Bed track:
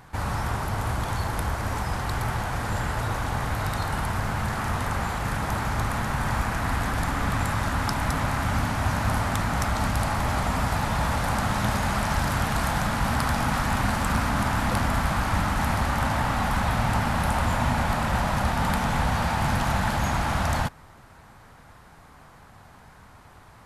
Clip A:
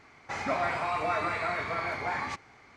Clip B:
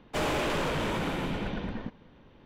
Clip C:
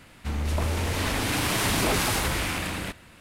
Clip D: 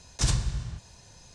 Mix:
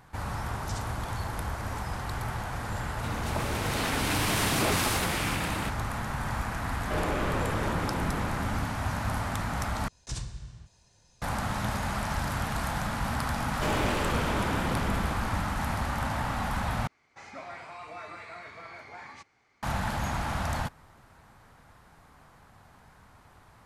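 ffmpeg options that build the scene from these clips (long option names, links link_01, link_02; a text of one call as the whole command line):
ffmpeg -i bed.wav -i cue0.wav -i cue1.wav -i cue2.wav -i cue3.wav -filter_complex "[4:a]asplit=2[link_01][link_02];[2:a]asplit=2[link_03][link_04];[0:a]volume=-6dB[link_05];[3:a]highpass=frequency=110:width=0.5412,highpass=frequency=110:width=1.3066[link_06];[link_03]adynamicsmooth=sensitivity=1.5:basefreq=1800[link_07];[1:a]highshelf=frequency=3500:gain=6[link_08];[link_05]asplit=3[link_09][link_10][link_11];[link_09]atrim=end=9.884[link_12];[link_02]atrim=end=1.34,asetpts=PTS-STARTPTS,volume=-11dB[link_13];[link_10]atrim=start=11.216:end=16.874[link_14];[link_08]atrim=end=2.76,asetpts=PTS-STARTPTS,volume=-13.5dB[link_15];[link_11]atrim=start=19.626[link_16];[link_01]atrim=end=1.34,asetpts=PTS-STARTPTS,volume=-14dB,afade=type=in:duration=0.004:curve=hsin,afade=type=out:start_time=1.336:duration=0.004:curve=hsin,adelay=480[link_17];[link_06]atrim=end=3.2,asetpts=PTS-STARTPTS,volume=-2.5dB,afade=type=in:duration=0.004:curve=hsin,afade=type=out:start_time=3.196:duration=0.004:curve=hsin,adelay=2780[link_18];[link_07]atrim=end=2.45,asetpts=PTS-STARTPTS,volume=-1.5dB,afade=type=in:duration=0.004:curve=hsin,afade=type=out:start_time=2.446:duration=0.004:curve=hsin,adelay=6760[link_19];[link_04]atrim=end=2.45,asetpts=PTS-STARTPTS,volume=-1.5dB,afade=type=in:duration=0.004:curve=hsin,afade=type=out:start_time=2.446:duration=0.004:curve=hsin,adelay=13470[link_20];[link_12][link_13]acrossfade=duration=0.004:curve1=hsin:curve2=hsin[link_21];[link_21][link_14]acrossfade=duration=0.004:curve1=hsin:curve2=hsin[link_22];[link_22][link_15]acrossfade=duration=0.004:curve1=hsin:curve2=hsin[link_23];[link_23][link_16]acrossfade=duration=0.004:curve1=hsin:curve2=hsin[link_24];[link_24][link_17][link_18][link_19][link_20]amix=inputs=5:normalize=0" out.wav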